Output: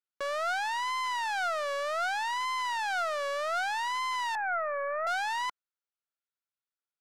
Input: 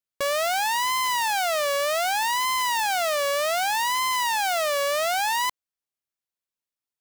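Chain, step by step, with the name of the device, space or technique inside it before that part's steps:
intercom (band-pass filter 310–4,700 Hz; parametric band 1,400 Hz +10.5 dB 0.3 octaves; soft clipping −17 dBFS, distortion −17 dB)
0:04.35–0:05.07: Butterworth low-pass 2,300 Hz 96 dB per octave
level −6.5 dB

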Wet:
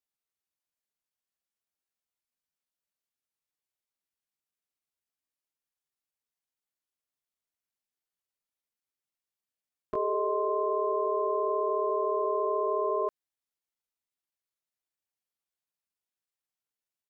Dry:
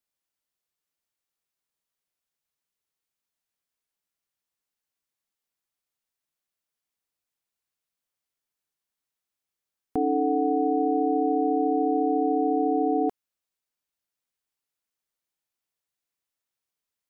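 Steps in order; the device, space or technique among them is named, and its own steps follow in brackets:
chipmunk voice (pitch shifter +6 semitones)
level −4.5 dB

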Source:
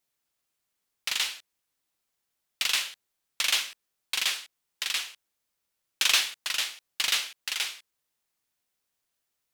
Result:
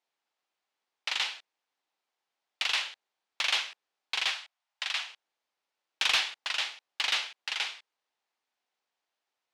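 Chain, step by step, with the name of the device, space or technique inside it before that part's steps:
intercom (band-pass filter 330–4,300 Hz; parametric band 820 Hz +6 dB 0.56 octaves; soft clipping −15 dBFS, distortion −20 dB)
0:04.31–0:05.09: elliptic high-pass filter 590 Hz, stop band 40 dB

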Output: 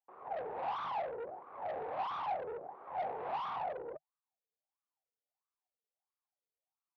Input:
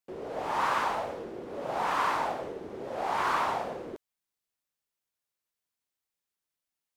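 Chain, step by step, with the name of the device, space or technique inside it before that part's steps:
wah-wah guitar rig (LFO wah 1.5 Hz 440–1,200 Hz, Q 9.2; tube saturation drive 46 dB, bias 0.45; loudspeaker in its box 95–3,600 Hz, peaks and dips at 150 Hz +5 dB, 770 Hz +9 dB, 3,100 Hz −4 dB)
level +7 dB

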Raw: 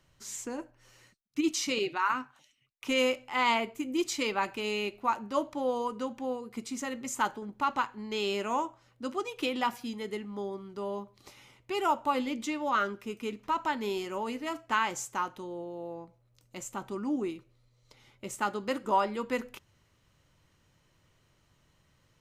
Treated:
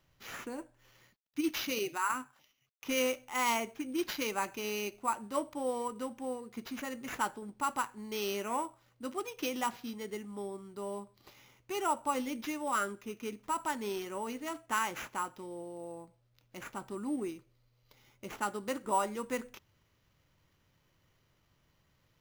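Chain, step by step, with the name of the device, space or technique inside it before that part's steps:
early companding sampler (sample-rate reduction 8,800 Hz, jitter 0%; log-companded quantiser 8 bits)
level −4 dB

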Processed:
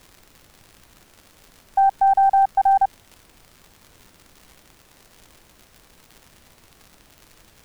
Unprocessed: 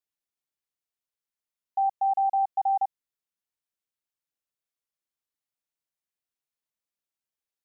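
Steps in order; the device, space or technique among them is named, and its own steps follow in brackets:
record under a worn stylus (stylus tracing distortion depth 0.022 ms; surface crackle 140 per second −43 dBFS; pink noise bed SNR 29 dB)
level +8.5 dB

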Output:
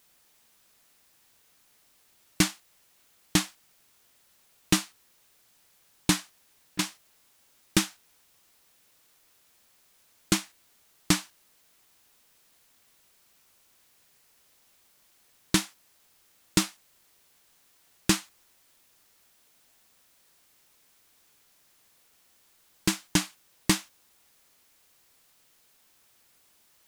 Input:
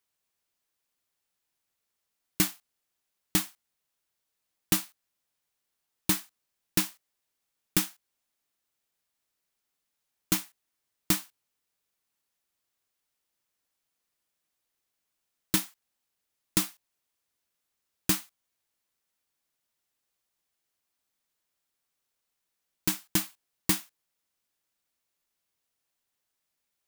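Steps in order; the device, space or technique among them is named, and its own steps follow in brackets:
worn cassette (low-pass filter 7,900 Hz 12 dB per octave; tape wow and flutter; tape dropouts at 0:06.72, 68 ms −22 dB; white noise bed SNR 28 dB)
level +5 dB

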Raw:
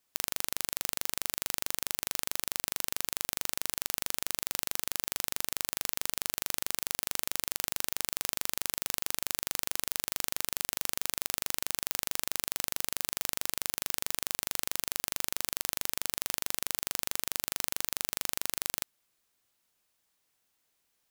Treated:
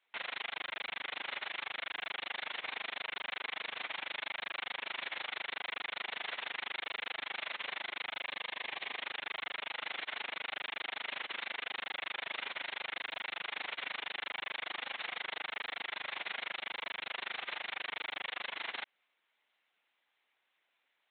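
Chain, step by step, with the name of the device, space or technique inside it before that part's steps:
talking toy (linear-prediction vocoder at 8 kHz; high-pass filter 460 Hz 12 dB per octave; parametric band 2,100 Hz +5.5 dB 0.51 octaves)
0:08.21–0:09.01: notch filter 1,400 Hz, Q 5.1
level +3 dB

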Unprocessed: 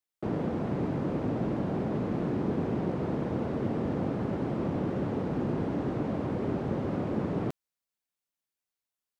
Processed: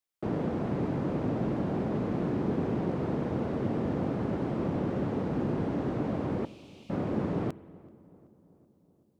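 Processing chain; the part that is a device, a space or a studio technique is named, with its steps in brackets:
0:06.45–0:06.90: Butterworth high-pass 2,400 Hz 72 dB per octave
dub delay into a spring reverb (feedback echo with a low-pass in the loop 381 ms, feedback 61%, low-pass 1,600 Hz, level −22.5 dB; spring reverb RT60 1.6 s, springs 45 ms, chirp 45 ms, DRR 19 dB)

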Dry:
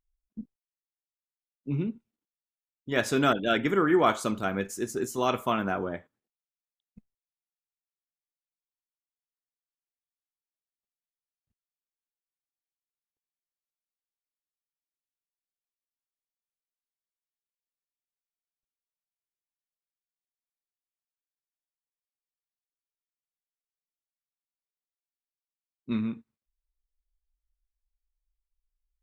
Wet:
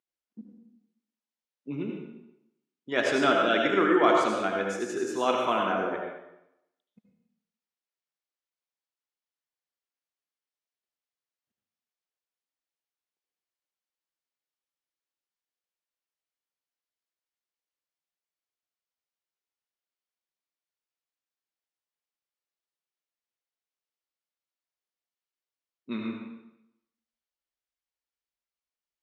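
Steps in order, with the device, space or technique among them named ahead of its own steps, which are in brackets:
supermarket ceiling speaker (band-pass filter 270–5,800 Hz; convolution reverb RT60 0.85 s, pre-delay 71 ms, DRR 0.5 dB)

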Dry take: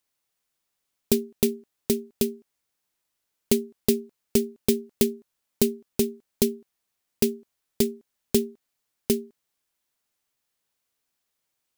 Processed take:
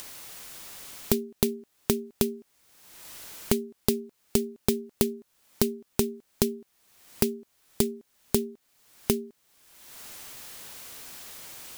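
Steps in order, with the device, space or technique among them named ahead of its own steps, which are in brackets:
upward and downward compression (upward compression, threshold −28 dBFS; downward compressor 6 to 1, threshold −29 dBFS, peak gain reduction 13 dB)
level +7.5 dB

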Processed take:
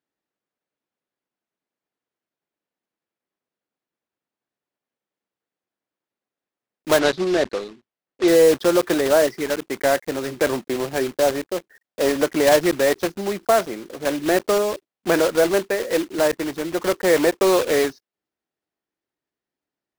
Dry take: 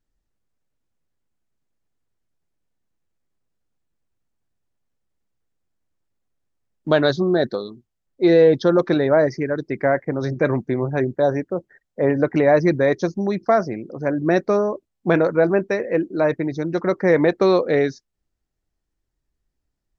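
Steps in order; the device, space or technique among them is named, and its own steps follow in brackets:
early digital voice recorder (band-pass filter 290–3,800 Hz; one scale factor per block 3 bits)
0:06.99–0:08.28: low-pass filter 5,600 Hz 12 dB per octave

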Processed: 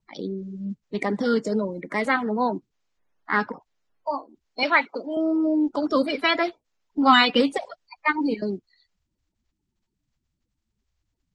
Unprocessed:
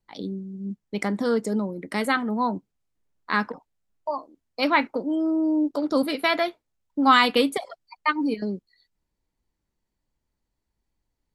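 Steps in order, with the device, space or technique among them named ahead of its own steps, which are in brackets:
clip after many re-uploads (low-pass filter 7,200 Hz 24 dB per octave; spectral magnitudes quantised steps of 30 dB)
0:04.63–0:05.17: meter weighting curve A
level +1.5 dB

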